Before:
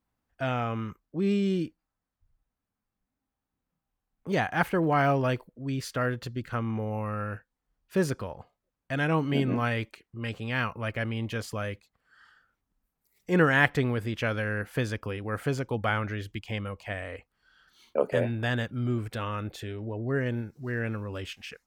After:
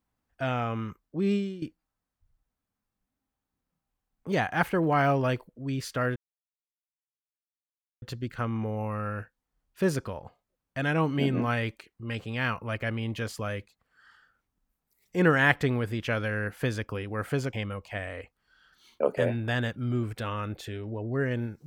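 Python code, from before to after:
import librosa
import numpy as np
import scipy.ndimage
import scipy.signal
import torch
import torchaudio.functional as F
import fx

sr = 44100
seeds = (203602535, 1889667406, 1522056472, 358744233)

y = fx.edit(x, sr, fx.fade_out_to(start_s=1.35, length_s=0.27, curve='qua', floor_db=-14.5),
    fx.insert_silence(at_s=6.16, length_s=1.86),
    fx.cut(start_s=15.67, length_s=0.81), tone=tone)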